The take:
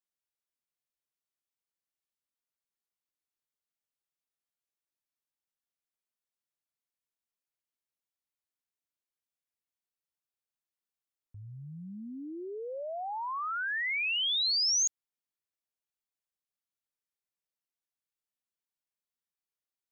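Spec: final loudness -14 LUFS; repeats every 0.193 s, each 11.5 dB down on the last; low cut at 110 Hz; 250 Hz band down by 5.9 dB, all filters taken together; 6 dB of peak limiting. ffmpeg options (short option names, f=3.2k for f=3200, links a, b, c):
-af "highpass=110,equalizer=f=250:t=o:g=-8,alimiter=level_in=5.5dB:limit=-24dB:level=0:latency=1,volume=-5.5dB,aecho=1:1:193|386|579:0.266|0.0718|0.0194,volume=18dB"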